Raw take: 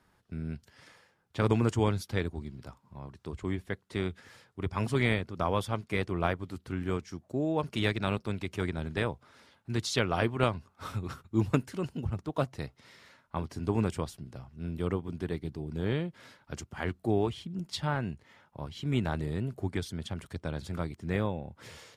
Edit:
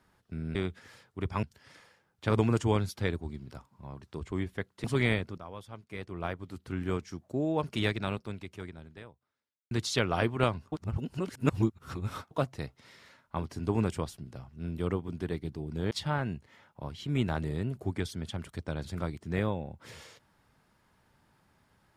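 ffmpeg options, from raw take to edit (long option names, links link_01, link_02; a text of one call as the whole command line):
ffmpeg -i in.wav -filter_complex "[0:a]asplit=9[link_01][link_02][link_03][link_04][link_05][link_06][link_07][link_08][link_09];[link_01]atrim=end=0.552[link_10];[link_02]atrim=start=3.958:end=4.842[link_11];[link_03]atrim=start=0.548:end=3.962[link_12];[link_04]atrim=start=4.838:end=5.38,asetpts=PTS-STARTPTS,afade=type=out:start_time=0.538:duration=0.004:curve=hsin:silence=0.16788[link_13];[link_05]atrim=start=5.38:end=9.71,asetpts=PTS-STARTPTS,afade=type=in:duration=1.4:curve=qua:silence=0.16788,afade=type=out:start_time=2.42:duration=1.91:curve=qua[link_14];[link_06]atrim=start=9.71:end=10.722,asetpts=PTS-STARTPTS,afade=type=in:duration=0.004:curve=hsin[link_15];[link_07]atrim=start=10.718:end=12.312,asetpts=PTS-STARTPTS,areverse[link_16];[link_08]atrim=start=12.308:end=15.912[link_17];[link_09]atrim=start=17.678[link_18];[link_10][link_11]acrossfade=duration=0.004:curve1=hsin:curve2=hsin[link_19];[link_19][link_12]acrossfade=duration=0.004:curve1=hsin:curve2=hsin[link_20];[link_13][link_14][link_15]concat=n=3:v=0:a=1[link_21];[link_20][link_21]acrossfade=duration=0.004:curve1=hsin:curve2=hsin[link_22];[link_22][link_16]acrossfade=duration=0.004:curve1=hsin:curve2=hsin[link_23];[link_23][link_17]acrossfade=duration=0.004:curve1=hsin:curve2=hsin[link_24];[link_24][link_18]acrossfade=duration=0.004:curve1=hsin:curve2=hsin" out.wav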